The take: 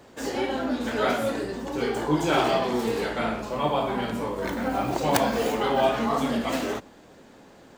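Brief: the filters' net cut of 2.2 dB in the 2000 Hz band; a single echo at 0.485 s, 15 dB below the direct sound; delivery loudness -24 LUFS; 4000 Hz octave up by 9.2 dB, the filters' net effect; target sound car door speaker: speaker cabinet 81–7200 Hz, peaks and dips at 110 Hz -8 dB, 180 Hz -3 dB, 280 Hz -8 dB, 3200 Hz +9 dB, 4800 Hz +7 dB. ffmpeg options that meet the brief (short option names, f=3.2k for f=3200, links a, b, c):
-af "highpass=81,equalizer=f=110:t=q:w=4:g=-8,equalizer=f=180:t=q:w=4:g=-3,equalizer=f=280:t=q:w=4:g=-8,equalizer=f=3.2k:t=q:w=4:g=9,equalizer=f=4.8k:t=q:w=4:g=7,lowpass=f=7.2k:w=0.5412,lowpass=f=7.2k:w=1.3066,equalizer=f=2k:t=o:g=-5,equalizer=f=4k:t=o:g=4,aecho=1:1:485:0.178,volume=2dB"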